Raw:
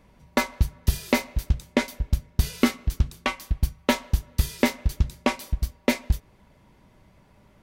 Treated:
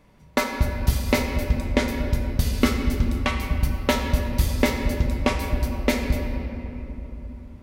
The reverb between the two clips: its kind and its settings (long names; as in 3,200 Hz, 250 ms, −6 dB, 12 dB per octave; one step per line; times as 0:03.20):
rectangular room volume 210 cubic metres, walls hard, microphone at 0.37 metres